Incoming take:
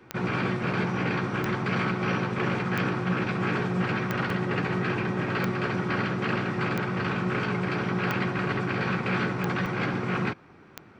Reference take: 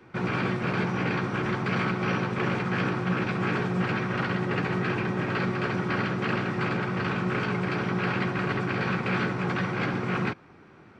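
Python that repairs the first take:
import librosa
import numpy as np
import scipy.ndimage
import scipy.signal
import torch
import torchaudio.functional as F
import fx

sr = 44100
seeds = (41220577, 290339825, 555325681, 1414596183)

y = fx.fix_declick_ar(x, sr, threshold=10.0)
y = fx.fix_interpolate(y, sr, at_s=(4.3, 9.66), length_ms=2.3)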